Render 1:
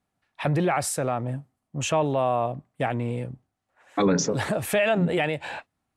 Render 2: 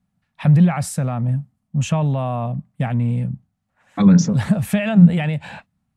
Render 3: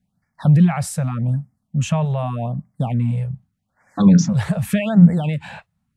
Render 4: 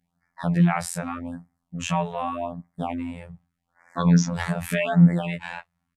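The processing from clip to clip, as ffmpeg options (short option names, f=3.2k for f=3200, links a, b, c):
-af "lowshelf=f=260:t=q:w=3:g=9.5,volume=-1dB"
-af "afftfilt=real='re*(1-between(b*sr/1024,240*pow(3400/240,0.5+0.5*sin(2*PI*0.84*pts/sr))/1.41,240*pow(3400/240,0.5+0.5*sin(2*PI*0.84*pts/sr))*1.41))':imag='im*(1-between(b*sr/1024,240*pow(3400/240,0.5+0.5*sin(2*PI*0.84*pts/sr))/1.41,240*pow(3400/240,0.5+0.5*sin(2*PI*0.84*pts/sr))*1.41))':win_size=1024:overlap=0.75"
-af "aresample=32000,aresample=44100,equalizer=f=125:t=o:w=1:g=-8,equalizer=f=1k:t=o:w=1:g=5,equalizer=f=2k:t=o:w=1:g=5,afftfilt=real='hypot(re,im)*cos(PI*b)':imag='0':win_size=2048:overlap=0.75"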